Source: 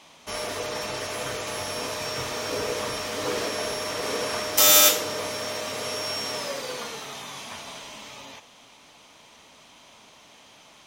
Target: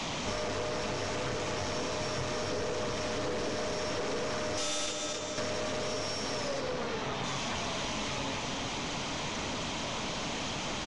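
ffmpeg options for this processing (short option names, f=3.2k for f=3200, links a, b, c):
-filter_complex "[0:a]aeval=exprs='val(0)+0.5*0.0376*sgn(val(0))':c=same,asettb=1/sr,asplit=3[a][b][c];[a]atrim=end=4.864[d];[b]atrim=start=4.86:end=5.38,asetpts=PTS-STARTPTS,afade=t=in:d=0.004:c=qsin,afade=t=out:st=0.516:d=0.004:c=qsin,agate=range=-12dB:threshold=-17dB:ratio=16:detection=peak[e];[c]atrim=start=5.376[f];[d][e]acrossfade=d=0.004:c1=hsin:c2=qsin[g];[g][f]acrossfade=d=0.004:c1=qsin:c2=hsin,asettb=1/sr,asplit=3[h][i][j];[h]atrim=end=6.604[k];[i]atrim=start=6.6:end=7.24,asetpts=PTS-STARTPTS,afade=t=in:d=0.004:c=qsin,afade=t=out:st=0.636:d=0.004:c=qsin,highshelf=f=4.7k:g=-11.5[l];[j]atrim=start=7.236[m];[k][l]acrossfade=d=0.004:c1=hsin:c2=qsin[n];[n][m]acrossfade=d=0.004:c1=qsin:c2=hsin,aresample=16000,aresample=44100,lowshelf=f=420:g=10,aecho=1:1:266|532|798|1064:0.237|0.0854|0.0307|0.0111,aeval=exprs='(tanh(14.1*val(0)+0.6)-tanh(0.6))/14.1':c=same,acompressor=threshold=-30dB:ratio=6" -ar 22050 -c:a nellymoser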